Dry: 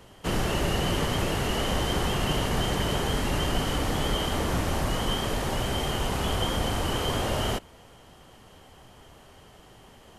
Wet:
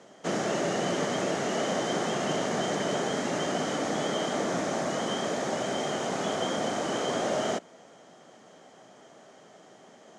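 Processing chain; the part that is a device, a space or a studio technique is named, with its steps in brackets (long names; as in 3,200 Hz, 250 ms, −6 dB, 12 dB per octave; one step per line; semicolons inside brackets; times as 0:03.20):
television speaker (loudspeaker in its box 180–7,500 Hz, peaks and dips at 640 Hz +6 dB, 980 Hz −5 dB, 2,800 Hz −9 dB, 4,400 Hz −4 dB, 6,500 Hz +5 dB)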